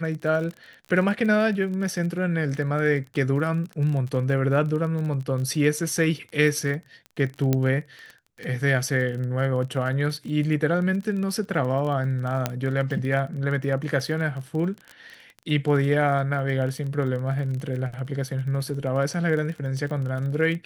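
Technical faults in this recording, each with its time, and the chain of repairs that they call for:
crackle 30 per s -31 dBFS
7.53 s: pop -9 dBFS
12.46 s: pop -8 dBFS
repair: de-click

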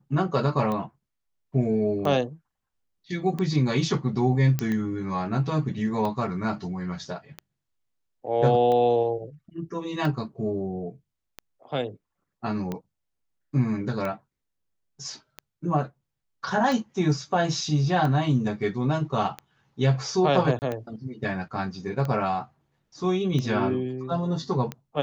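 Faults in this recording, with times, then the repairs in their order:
tick 45 rpm -18 dBFS
4.59 s: pop -12 dBFS
20.59–20.62 s: dropout 29 ms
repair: de-click; interpolate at 20.59 s, 29 ms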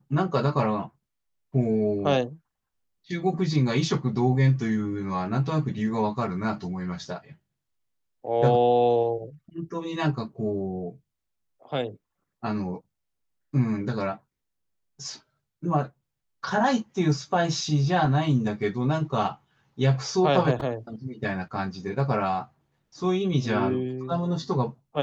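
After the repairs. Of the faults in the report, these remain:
nothing left

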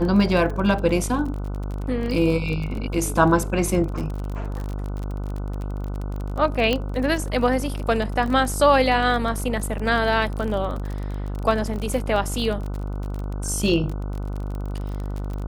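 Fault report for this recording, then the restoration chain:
buzz 50 Hz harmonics 30 -28 dBFS
crackle 30 per s -28 dBFS
6.73 s: pop -9 dBFS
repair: de-click; de-hum 50 Hz, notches 30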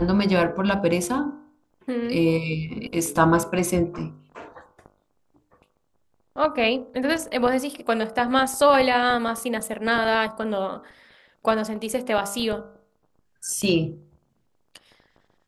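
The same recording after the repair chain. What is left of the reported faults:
nothing left

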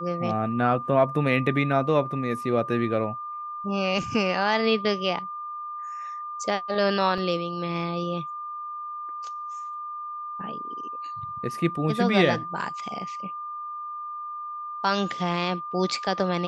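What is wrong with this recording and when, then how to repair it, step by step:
whine 1.2 kHz -32 dBFS
7.18 s: dropout 2.9 ms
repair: band-stop 1.2 kHz, Q 30; interpolate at 7.18 s, 2.9 ms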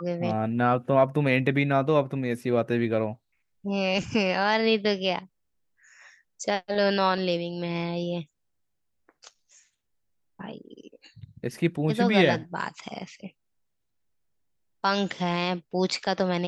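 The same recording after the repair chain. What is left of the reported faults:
nothing left

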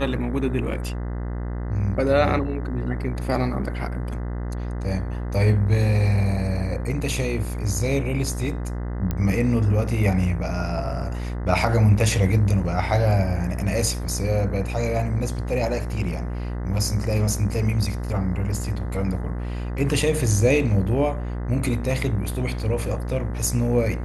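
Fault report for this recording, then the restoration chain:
buzz 60 Hz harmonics 34 -28 dBFS
9.11 s: pop -13 dBFS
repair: de-click; de-hum 60 Hz, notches 34

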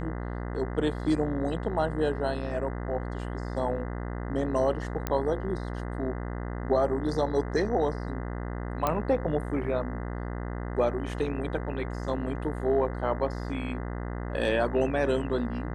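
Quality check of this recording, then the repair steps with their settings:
buzz 60 Hz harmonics 34 -34 dBFS
5.07 s: pop -14 dBFS
8.87 s: pop -12 dBFS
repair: de-click; de-hum 60 Hz, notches 34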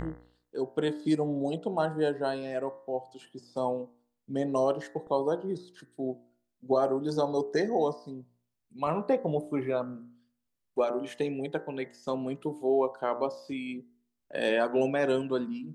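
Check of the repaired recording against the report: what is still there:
8.87 s: pop

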